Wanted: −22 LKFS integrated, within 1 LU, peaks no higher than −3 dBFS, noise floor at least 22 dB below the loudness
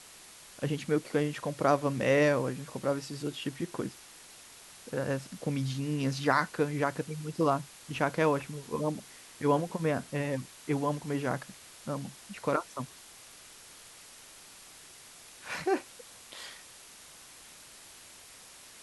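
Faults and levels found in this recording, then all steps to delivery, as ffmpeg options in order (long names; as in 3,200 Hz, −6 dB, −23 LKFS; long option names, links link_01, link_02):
background noise floor −52 dBFS; target noise floor −54 dBFS; integrated loudness −31.5 LKFS; sample peak −10.5 dBFS; target loudness −22.0 LKFS
→ -af "afftdn=noise_reduction=6:noise_floor=-52"
-af "volume=9.5dB,alimiter=limit=-3dB:level=0:latency=1"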